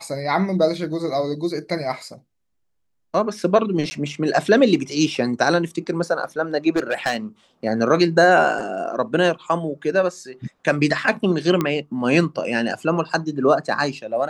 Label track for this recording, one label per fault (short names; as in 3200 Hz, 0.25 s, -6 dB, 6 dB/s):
3.900000	3.910000	gap 10 ms
6.760000	7.170000	clipped -14.5 dBFS
11.610000	11.610000	pop -8 dBFS